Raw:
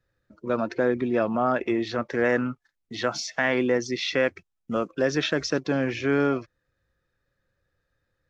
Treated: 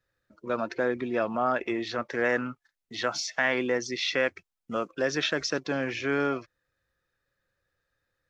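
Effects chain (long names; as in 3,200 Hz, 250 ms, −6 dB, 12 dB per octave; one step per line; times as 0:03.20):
low-shelf EQ 490 Hz −8 dB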